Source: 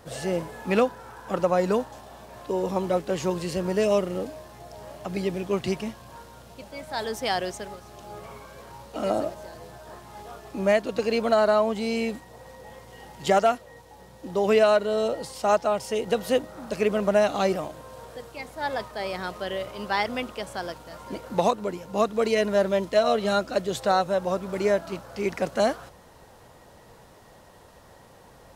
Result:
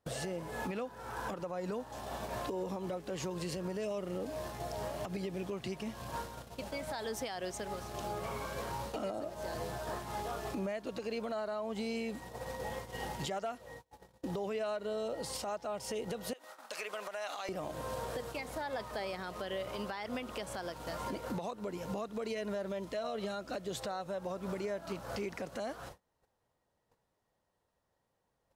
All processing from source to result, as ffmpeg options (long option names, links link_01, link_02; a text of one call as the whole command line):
ffmpeg -i in.wav -filter_complex "[0:a]asettb=1/sr,asplit=3[link_01][link_02][link_03];[link_01]atrim=end=16.334[link_04];[link_02]atrim=start=16.33:end=17.49,asetpts=PTS-STARTPTS,afade=type=in:duration=0.004:curve=qsin,afade=type=out:start_time=1.156:duration=0.004:curve=qsin,highpass=940,acompressor=threshold=-38dB:ratio=10:attack=3.2:release=140:knee=1:detection=peak[link_05];[link_03]atrim=start=17.486[link_06];[link_04][link_05]acrossfade=duration=0.004:curve1=hsin:curve2=qsin[link_07];[link_07][link_06]acrossfade=duration=0.004:curve1=qsin:curve2=hsin,agate=range=-36dB:threshold=-45dB:ratio=16:detection=peak,acompressor=threshold=-41dB:ratio=2.5,alimiter=level_in=11.5dB:limit=-24dB:level=0:latency=1:release=170,volume=-11.5dB,volume=6.5dB" out.wav